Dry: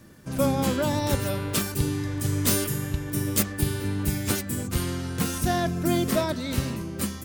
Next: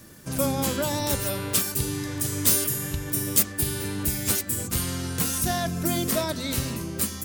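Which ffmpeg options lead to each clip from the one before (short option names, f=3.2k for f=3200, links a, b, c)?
-filter_complex "[0:a]highshelf=f=4.6k:g=10,bandreject=f=50:t=h:w=6,bandreject=f=100:t=h:w=6,bandreject=f=150:t=h:w=6,bandreject=f=200:t=h:w=6,bandreject=f=250:t=h:w=6,bandreject=f=300:t=h:w=6,bandreject=f=350:t=h:w=6,asplit=2[a][b];[b]acompressor=threshold=-29dB:ratio=6,volume=2.5dB[c];[a][c]amix=inputs=2:normalize=0,volume=-5.5dB"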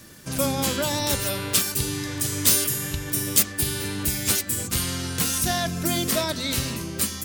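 -af "equalizer=f=3.6k:t=o:w=2.5:g=5.5"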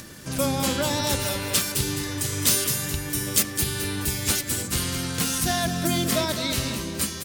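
-af "highshelf=f=11k:g=-5.5,aecho=1:1:212|424|636|848:0.376|0.135|0.0487|0.0175,acompressor=mode=upward:threshold=-36dB:ratio=2.5"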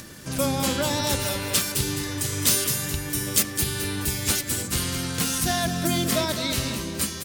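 -af anull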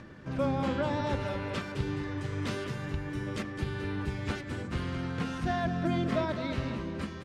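-af "lowpass=1.8k,volume=-4dB"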